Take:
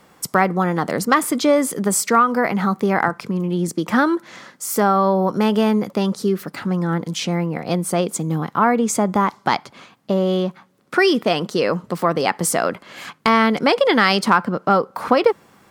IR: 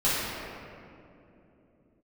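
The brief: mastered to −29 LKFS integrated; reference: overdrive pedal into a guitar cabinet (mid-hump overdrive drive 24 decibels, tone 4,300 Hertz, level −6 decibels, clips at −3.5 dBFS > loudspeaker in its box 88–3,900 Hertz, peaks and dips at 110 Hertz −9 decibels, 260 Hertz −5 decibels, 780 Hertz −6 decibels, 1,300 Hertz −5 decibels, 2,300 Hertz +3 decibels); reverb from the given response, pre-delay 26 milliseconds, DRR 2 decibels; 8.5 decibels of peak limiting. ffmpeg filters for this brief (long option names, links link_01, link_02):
-filter_complex "[0:a]alimiter=limit=-10dB:level=0:latency=1,asplit=2[link_01][link_02];[1:a]atrim=start_sample=2205,adelay=26[link_03];[link_02][link_03]afir=irnorm=-1:irlink=0,volume=-16.5dB[link_04];[link_01][link_04]amix=inputs=2:normalize=0,asplit=2[link_05][link_06];[link_06]highpass=frequency=720:poles=1,volume=24dB,asoftclip=type=tanh:threshold=-3.5dB[link_07];[link_05][link_07]amix=inputs=2:normalize=0,lowpass=frequency=4300:poles=1,volume=-6dB,highpass=88,equalizer=frequency=110:width_type=q:width=4:gain=-9,equalizer=frequency=260:width_type=q:width=4:gain=-5,equalizer=frequency=780:width_type=q:width=4:gain=-6,equalizer=frequency=1300:width_type=q:width=4:gain=-5,equalizer=frequency=2300:width_type=q:width=4:gain=3,lowpass=frequency=3900:width=0.5412,lowpass=frequency=3900:width=1.3066,volume=-15dB"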